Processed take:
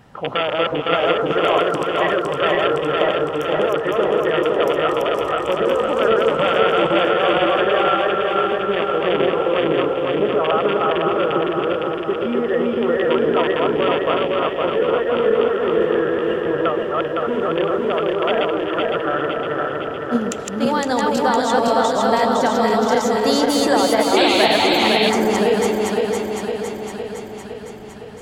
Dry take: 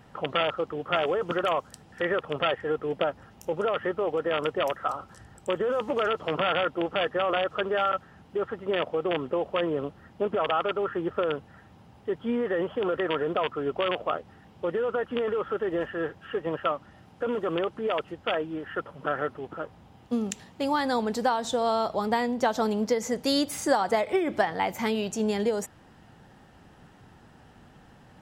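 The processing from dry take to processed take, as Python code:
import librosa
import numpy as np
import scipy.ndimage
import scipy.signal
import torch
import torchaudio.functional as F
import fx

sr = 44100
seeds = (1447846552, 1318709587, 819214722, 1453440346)

y = fx.reverse_delay_fb(x, sr, ms=255, feedback_pct=78, wet_db=-1.0)
y = fx.echo_stepped(y, sr, ms=131, hz=410.0, octaves=1.4, feedback_pct=70, wet_db=-3.0)
y = fx.spec_paint(y, sr, seeds[0], shape='noise', start_s=24.16, length_s=0.94, low_hz=2000.0, high_hz=4500.0, level_db=-26.0)
y = y * 10.0 ** (4.5 / 20.0)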